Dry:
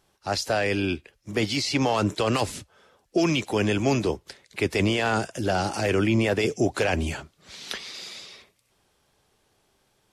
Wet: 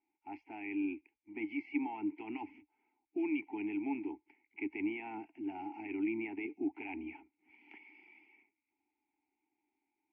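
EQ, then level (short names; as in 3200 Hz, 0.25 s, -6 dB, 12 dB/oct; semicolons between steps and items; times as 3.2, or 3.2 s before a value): vowel filter u; ladder low-pass 3100 Hz, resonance 40%; fixed phaser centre 770 Hz, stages 8; +3.5 dB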